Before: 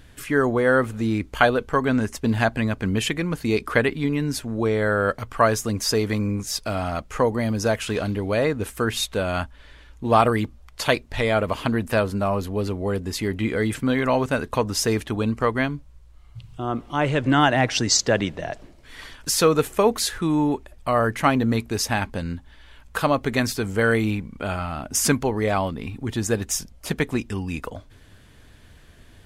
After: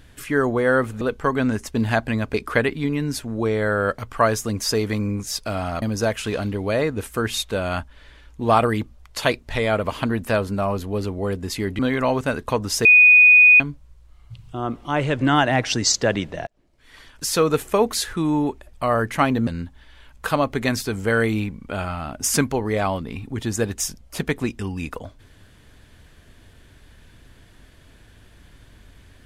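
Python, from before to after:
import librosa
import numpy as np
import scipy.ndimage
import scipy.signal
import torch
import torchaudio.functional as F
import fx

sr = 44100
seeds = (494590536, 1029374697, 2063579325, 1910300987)

y = fx.edit(x, sr, fx.cut(start_s=1.01, length_s=0.49),
    fx.cut(start_s=2.83, length_s=0.71),
    fx.cut(start_s=7.02, length_s=0.43),
    fx.cut(start_s=13.42, length_s=0.42),
    fx.bleep(start_s=14.9, length_s=0.75, hz=2480.0, db=-7.5),
    fx.fade_in_span(start_s=18.52, length_s=1.07),
    fx.cut(start_s=21.52, length_s=0.66), tone=tone)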